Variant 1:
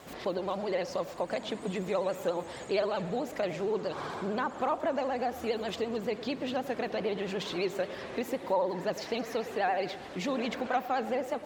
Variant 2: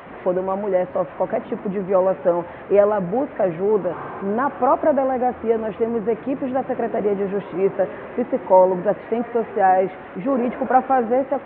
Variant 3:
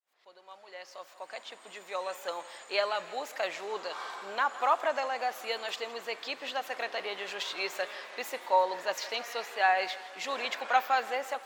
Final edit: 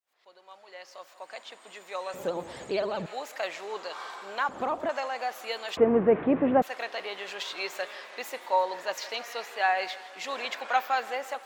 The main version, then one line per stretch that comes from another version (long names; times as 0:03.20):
3
0:02.14–0:03.06: punch in from 1
0:04.49–0:04.89: punch in from 1
0:05.77–0:06.62: punch in from 2